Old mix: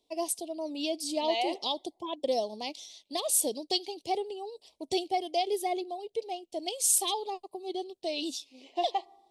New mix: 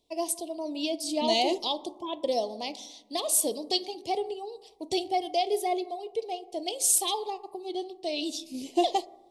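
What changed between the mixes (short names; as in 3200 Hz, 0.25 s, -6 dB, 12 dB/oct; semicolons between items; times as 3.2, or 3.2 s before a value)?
first voice: send on; second voice: remove BPF 740–2400 Hz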